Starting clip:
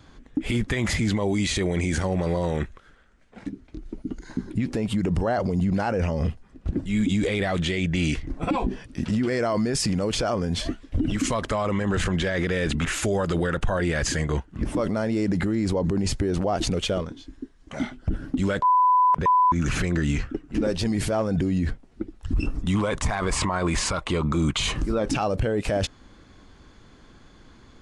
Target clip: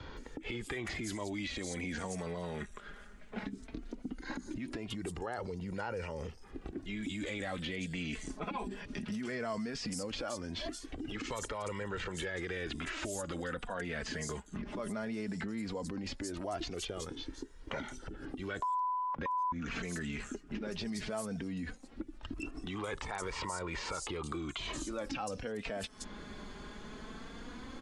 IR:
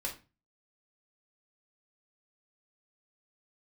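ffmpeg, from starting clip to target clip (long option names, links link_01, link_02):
-filter_complex "[0:a]acompressor=threshold=-34dB:ratio=6,acrossover=split=5300[link_01][link_02];[link_02]adelay=170[link_03];[link_01][link_03]amix=inputs=2:normalize=0,alimiter=level_in=5.5dB:limit=-24dB:level=0:latency=1:release=295,volume=-5.5dB,flanger=delay=2.1:depth=2.8:regen=26:speed=0.17:shape=sinusoidal,acrossover=split=180|1000[link_04][link_05][link_06];[link_04]acompressor=threshold=-57dB:ratio=4[link_07];[link_05]acompressor=threshold=-49dB:ratio=4[link_08];[link_06]acompressor=threshold=-49dB:ratio=4[link_09];[link_07][link_08][link_09]amix=inputs=3:normalize=0,volume=9.5dB"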